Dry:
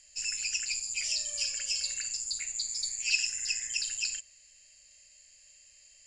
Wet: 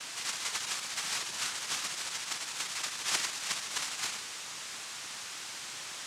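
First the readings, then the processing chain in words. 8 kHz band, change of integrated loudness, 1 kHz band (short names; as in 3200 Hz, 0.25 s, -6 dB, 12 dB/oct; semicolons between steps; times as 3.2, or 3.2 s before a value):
-3.5 dB, -4.0 dB, n/a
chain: delta modulation 64 kbps, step -33.5 dBFS; noise vocoder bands 2; gain -1.5 dB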